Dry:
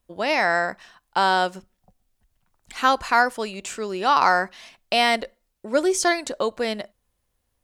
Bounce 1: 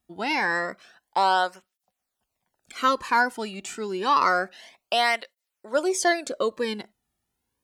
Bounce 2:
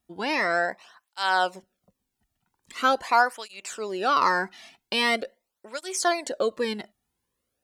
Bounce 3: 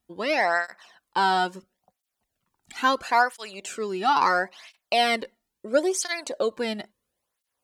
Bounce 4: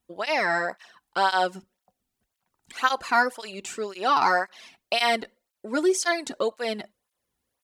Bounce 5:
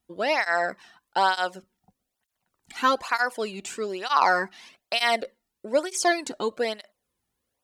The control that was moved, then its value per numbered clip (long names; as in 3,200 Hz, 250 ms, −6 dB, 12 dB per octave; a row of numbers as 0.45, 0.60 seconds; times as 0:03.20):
through-zero flanger with one copy inverted, nulls at: 0.28, 0.43, 0.74, 1.9, 1.1 Hertz